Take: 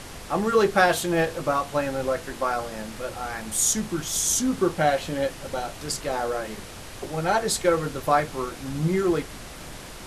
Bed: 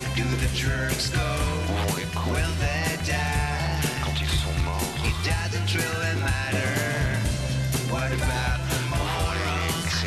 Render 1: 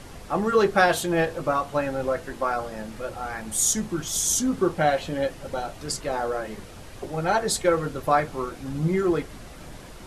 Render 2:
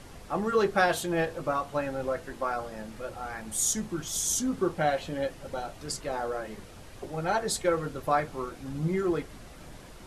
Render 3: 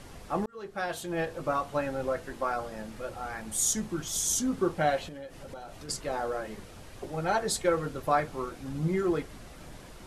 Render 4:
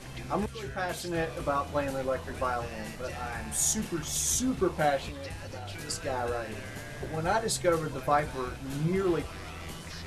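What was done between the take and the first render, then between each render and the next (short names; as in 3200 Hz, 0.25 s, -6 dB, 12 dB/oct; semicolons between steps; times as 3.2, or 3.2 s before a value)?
denoiser 7 dB, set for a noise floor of -40 dBFS
gain -5 dB
0.46–1.55 fade in; 5.08–5.89 compressor, threshold -39 dBFS
add bed -16.5 dB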